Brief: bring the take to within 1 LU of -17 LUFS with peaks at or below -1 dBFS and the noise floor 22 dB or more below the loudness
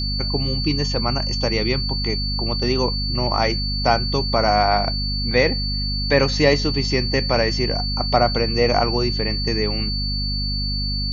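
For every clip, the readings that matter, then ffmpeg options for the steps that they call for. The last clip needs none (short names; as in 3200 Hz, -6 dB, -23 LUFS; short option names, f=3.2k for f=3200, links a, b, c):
hum 50 Hz; harmonics up to 250 Hz; hum level -23 dBFS; steady tone 4500 Hz; tone level -25 dBFS; loudness -20.0 LUFS; peak -2.5 dBFS; loudness target -17.0 LUFS
-> -af "bandreject=f=50:t=h:w=6,bandreject=f=100:t=h:w=6,bandreject=f=150:t=h:w=6,bandreject=f=200:t=h:w=6,bandreject=f=250:t=h:w=6"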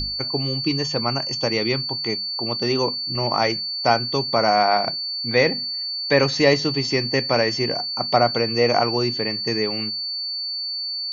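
hum none; steady tone 4500 Hz; tone level -25 dBFS
-> -af "bandreject=f=4.5k:w=30"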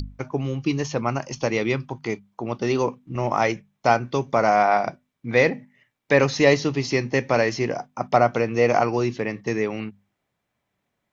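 steady tone none; loudness -22.5 LUFS; peak -3.0 dBFS; loudness target -17.0 LUFS
-> -af "volume=5.5dB,alimiter=limit=-1dB:level=0:latency=1"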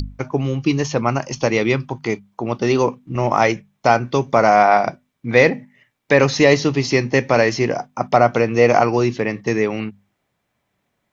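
loudness -17.5 LUFS; peak -1.0 dBFS; noise floor -73 dBFS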